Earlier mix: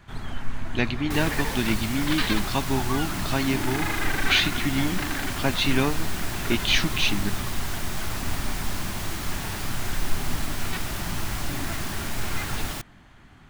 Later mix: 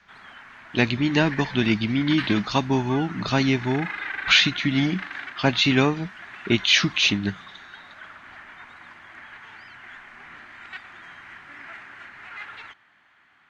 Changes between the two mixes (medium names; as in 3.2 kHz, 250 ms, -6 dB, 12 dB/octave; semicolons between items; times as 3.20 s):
speech +4.5 dB; first sound: add band-pass filter 1.8 kHz, Q 1.3; second sound: muted